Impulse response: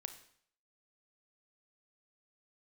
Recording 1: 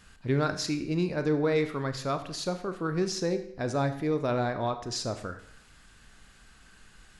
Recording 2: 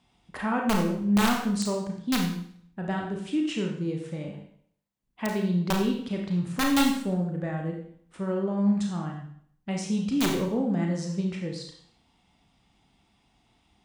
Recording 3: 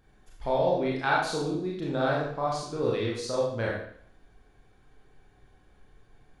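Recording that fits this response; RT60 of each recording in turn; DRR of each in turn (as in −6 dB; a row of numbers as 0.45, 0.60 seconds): 1; 0.60, 0.60, 0.60 seconds; 8.0, 0.5, −4.5 decibels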